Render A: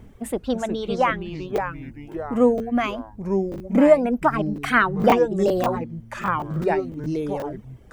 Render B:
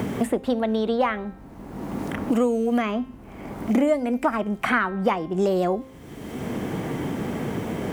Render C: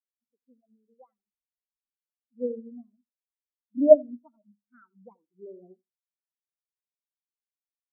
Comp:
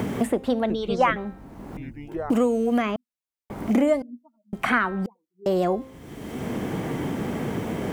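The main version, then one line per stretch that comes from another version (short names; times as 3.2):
B
0.7–1.16 from A
1.77–2.3 from A
2.96–3.5 from C
4.02–4.53 from C
5.06–5.46 from C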